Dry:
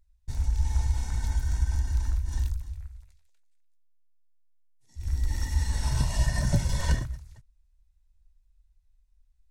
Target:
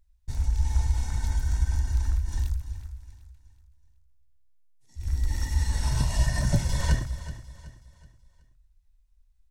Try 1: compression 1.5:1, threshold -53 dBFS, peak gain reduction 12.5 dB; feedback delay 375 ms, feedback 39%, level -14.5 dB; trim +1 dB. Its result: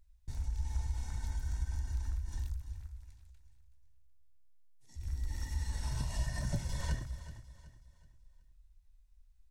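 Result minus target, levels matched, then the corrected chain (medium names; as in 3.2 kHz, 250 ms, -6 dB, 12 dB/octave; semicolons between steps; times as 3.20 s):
compression: peak gain reduction +12.5 dB
feedback delay 375 ms, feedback 39%, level -14.5 dB; trim +1 dB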